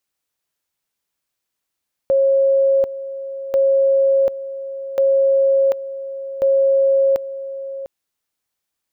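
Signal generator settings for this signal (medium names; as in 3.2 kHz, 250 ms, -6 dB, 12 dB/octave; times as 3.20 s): two-level tone 544 Hz -11.5 dBFS, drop 14 dB, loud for 0.74 s, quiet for 0.70 s, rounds 4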